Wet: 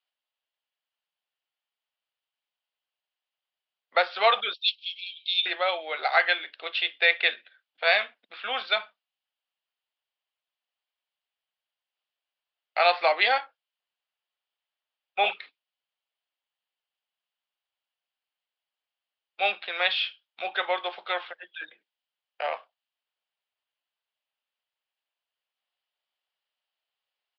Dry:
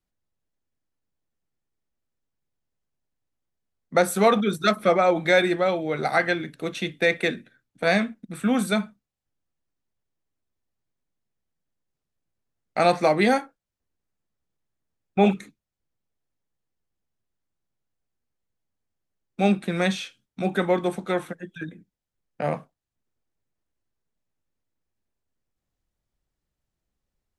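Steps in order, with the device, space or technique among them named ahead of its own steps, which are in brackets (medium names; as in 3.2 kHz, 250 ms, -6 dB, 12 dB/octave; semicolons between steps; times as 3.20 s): 4.53–5.46 s: steep high-pass 2.6 kHz 96 dB/octave; musical greeting card (resampled via 11.025 kHz; high-pass 640 Hz 24 dB/octave; peaking EQ 3 kHz +11.5 dB 0.54 oct)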